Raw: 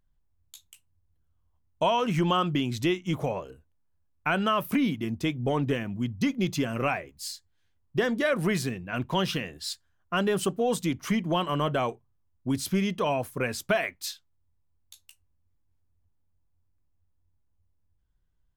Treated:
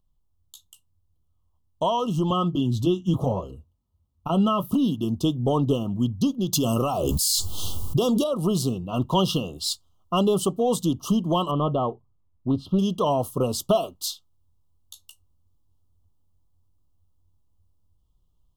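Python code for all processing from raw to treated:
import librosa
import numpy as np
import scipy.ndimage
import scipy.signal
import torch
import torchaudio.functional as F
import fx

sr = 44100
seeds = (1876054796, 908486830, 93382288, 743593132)

y = fx.chain(x, sr, fx.bass_treble(bass_db=8, treble_db=-3),
    fx.notch_comb(f0_hz=150.0), at=(2.3, 4.74))
y = fx.chain(y, sr, fx.high_shelf(hz=5100.0, db=11.0),
    fx.env_flatten(amount_pct=100), at=(6.53, 8.24))
y = fx.chain(y, sr, fx.air_absorb(metres=390.0),
    fx.doppler_dist(depth_ms=0.19), at=(11.51, 12.79))
y = scipy.signal.sosfilt(scipy.signal.cheby1(5, 1.0, [1300.0, 2800.0], 'bandstop', fs=sr, output='sos'), y)
y = fx.dynamic_eq(y, sr, hz=2200.0, q=1.3, threshold_db=-47.0, ratio=4.0, max_db=-4)
y = fx.rider(y, sr, range_db=5, speed_s=0.5)
y = F.gain(torch.from_numpy(y), 3.5).numpy()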